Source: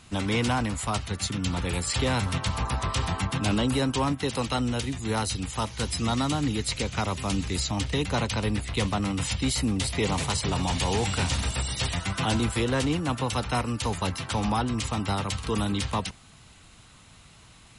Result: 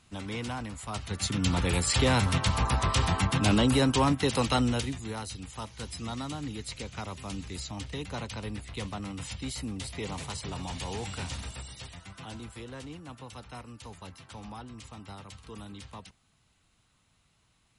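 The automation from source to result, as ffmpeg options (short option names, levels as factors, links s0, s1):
-af "volume=1.19,afade=t=in:st=0.87:d=0.59:silence=0.266073,afade=t=out:st=4.6:d=0.54:silence=0.266073,afade=t=out:st=11.33:d=0.57:silence=0.446684"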